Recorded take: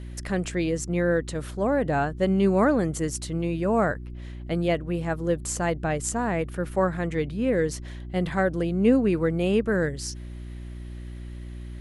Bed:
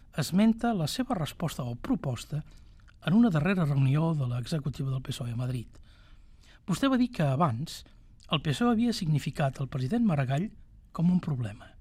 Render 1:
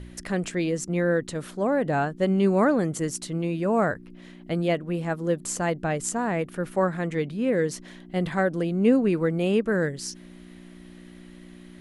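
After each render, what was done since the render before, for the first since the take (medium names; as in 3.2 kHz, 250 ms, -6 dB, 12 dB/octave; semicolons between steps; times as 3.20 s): de-hum 60 Hz, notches 2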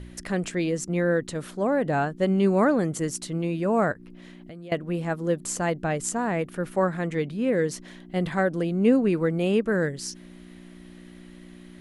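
3.92–4.72 s: compression, threshold -39 dBFS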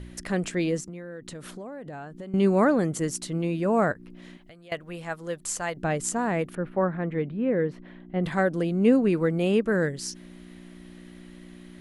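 0.80–2.34 s: compression 12:1, threshold -35 dBFS; 4.37–5.77 s: peaking EQ 240 Hz -13 dB 2.2 oct; 6.55–8.24 s: distance through air 500 m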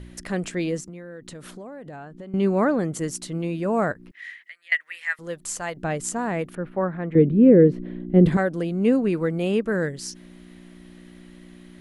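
1.96–2.93 s: treble shelf 6 kHz -8.5 dB; 4.11–5.19 s: resonant high-pass 1.9 kHz, resonance Q 10; 7.15–8.37 s: resonant low shelf 580 Hz +11.5 dB, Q 1.5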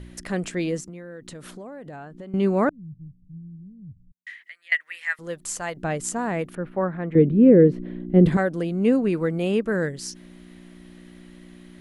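2.69–4.27 s: inverse Chebyshev low-pass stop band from 770 Hz, stop band 80 dB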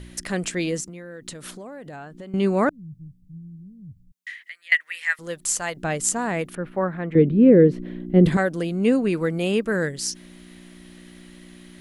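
treble shelf 2.2 kHz +8 dB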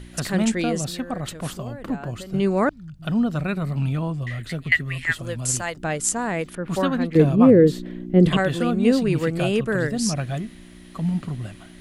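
add bed +1 dB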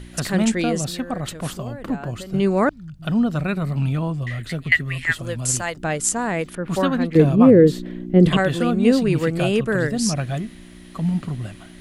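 trim +2 dB; peak limiter -3 dBFS, peak gain reduction 1 dB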